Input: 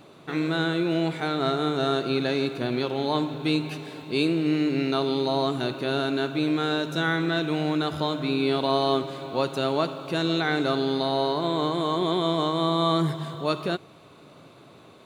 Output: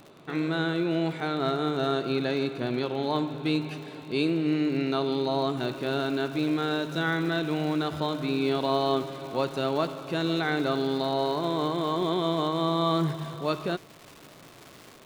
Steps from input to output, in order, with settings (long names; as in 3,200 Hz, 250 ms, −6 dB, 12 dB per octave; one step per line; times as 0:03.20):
surface crackle 78 per second −33 dBFS, from 0:05.57 540 per second
high-shelf EQ 5,100 Hz −6.5 dB
level −2 dB